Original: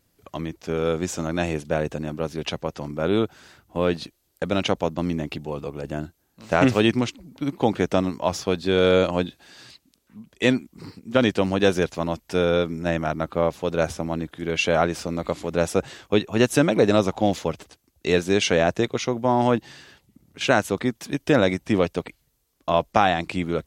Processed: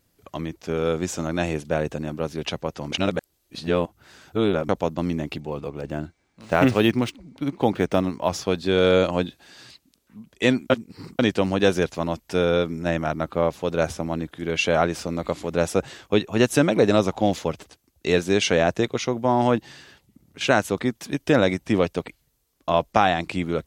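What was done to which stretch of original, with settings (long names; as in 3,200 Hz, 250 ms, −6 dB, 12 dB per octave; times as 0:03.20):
0:02.92–0:04.69: reverse
0:05.40–0:08.30: linearly interpolated sample-rate reduction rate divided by 3×
0:10.70–0:11.19: reverse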